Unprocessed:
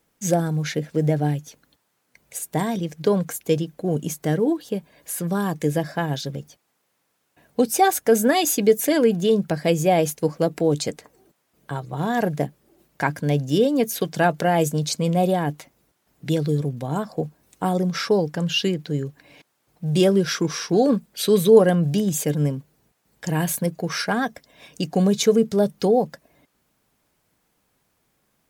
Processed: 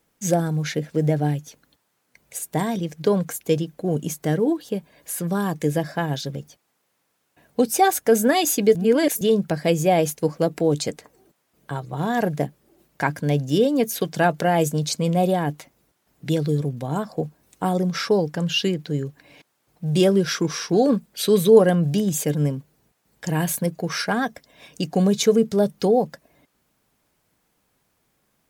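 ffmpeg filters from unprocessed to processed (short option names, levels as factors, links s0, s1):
-filter_complex "[0:a]asplit=3[s0][s1][s2];[s0]atrim=end=8.752[s3];[s1]atrim=start=8.748:end=9.212,asetpts=PTS-STARTPTS,areverse[s4];[s2]atrim=start=9.208[s5];[s3][s4]acrossfade=d=0.004:c1=hsin:c2=hsin[s6];[s6][s5]acrossfade=d=0.004:c1=hsin:c2=hsin"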